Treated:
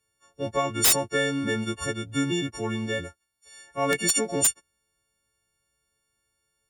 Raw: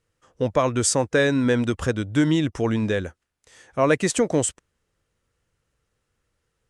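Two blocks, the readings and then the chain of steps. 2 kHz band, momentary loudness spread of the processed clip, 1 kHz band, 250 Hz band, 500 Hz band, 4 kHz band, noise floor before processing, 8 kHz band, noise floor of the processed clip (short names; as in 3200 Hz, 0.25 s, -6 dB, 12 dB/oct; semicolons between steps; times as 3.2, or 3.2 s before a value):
-2.5 dB, 11 LU, -2.5 dB, -7.5 dB, -7.0 dB, +3.0 dB, -77 dBFS, +3.0 dB, -77 dBFS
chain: frequency quantiser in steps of 4 st; wrapped overs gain 4.5 dB; added harmonics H 2 -38 dB, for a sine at -4.5 dBFS; gain -7 dB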